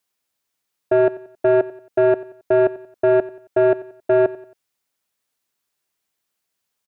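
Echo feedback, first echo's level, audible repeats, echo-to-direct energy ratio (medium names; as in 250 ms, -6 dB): 41%, -18.0 dB, 3, -17.0 dB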